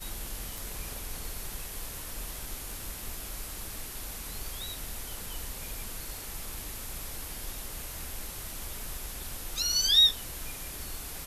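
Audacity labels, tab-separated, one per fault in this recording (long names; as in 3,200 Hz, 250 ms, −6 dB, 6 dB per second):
0.580000	0.580000	click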